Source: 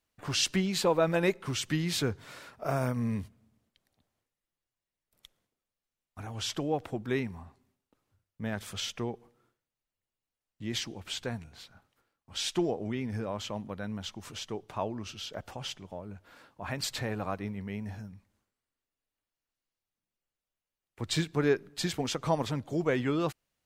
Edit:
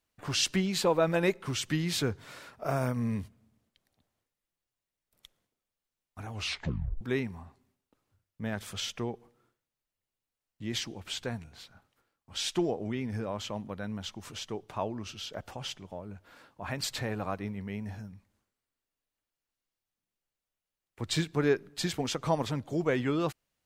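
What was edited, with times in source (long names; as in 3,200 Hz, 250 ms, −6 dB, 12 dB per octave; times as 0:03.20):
0:06.33: tape stop 0.68 s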